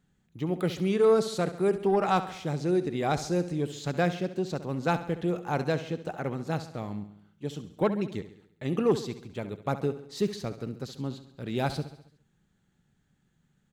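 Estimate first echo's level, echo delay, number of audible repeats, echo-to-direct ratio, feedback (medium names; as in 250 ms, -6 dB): -13.0 dB, 68 ms, 5, -11.5 dB, 54%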